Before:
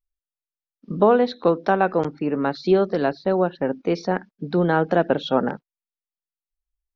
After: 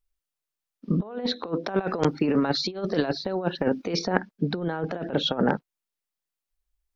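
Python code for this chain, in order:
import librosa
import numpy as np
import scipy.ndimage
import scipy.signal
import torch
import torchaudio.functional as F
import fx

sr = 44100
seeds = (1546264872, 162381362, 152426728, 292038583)

y = fx.high_shelf(x, sr, hz=3100.0, db=8.5, at=(1.76, 3.99))
y = fx.over_compress(y, sr, threshold_db=-24.0, ratio=-0.5)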